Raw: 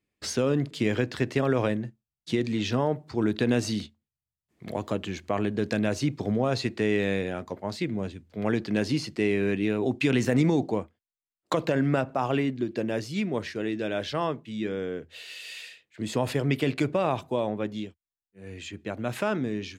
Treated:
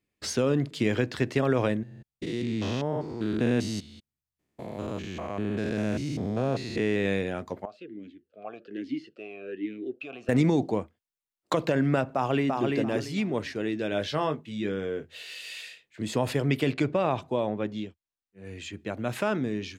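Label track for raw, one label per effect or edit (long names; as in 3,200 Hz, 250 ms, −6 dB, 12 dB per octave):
1.830000	7.060000	spectrum averaged block by block every 200 ms
7.650000	10.290000	formant filter swept between two vowels a-i 1.2 Hz
12.140000	12.630000	delay throw 340 ms, feedback 25%, level −3 dB
13.900000	16.030000	double-tracking delay 20 ms −8 dB
16.730000	18.450000	high-frequency loss of the air 54 metres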